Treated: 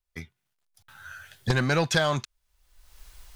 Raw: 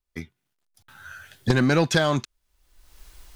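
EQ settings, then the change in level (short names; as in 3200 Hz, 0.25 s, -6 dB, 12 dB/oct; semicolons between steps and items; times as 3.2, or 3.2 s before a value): bell 280 Hz -8.5 dB 1.1 oct; -1.0 dB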